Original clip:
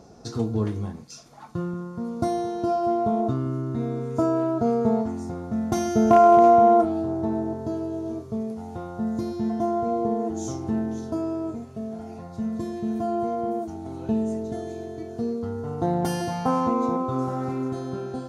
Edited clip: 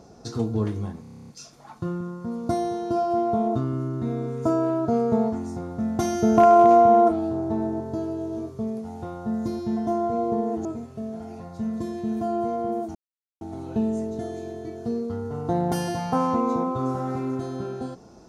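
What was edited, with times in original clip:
1.01 stutter 0.03 s, 10 plays
10.38–11.44 cut
13.74 insert silence 0.46 s

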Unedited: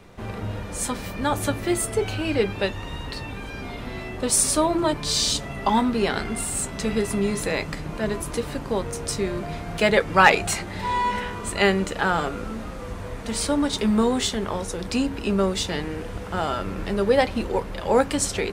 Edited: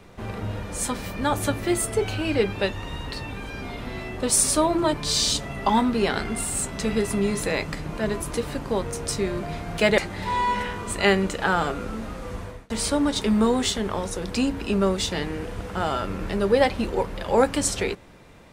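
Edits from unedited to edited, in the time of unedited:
9.98–10.55 cut
12.97–13.27 fade out

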